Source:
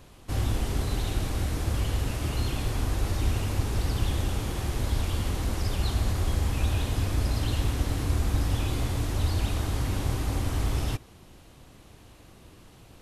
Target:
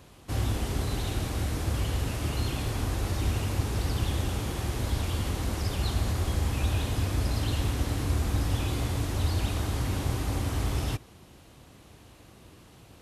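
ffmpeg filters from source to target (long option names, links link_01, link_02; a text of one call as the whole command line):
ffmpeg -i in.wav -af "highpass=51" out.wav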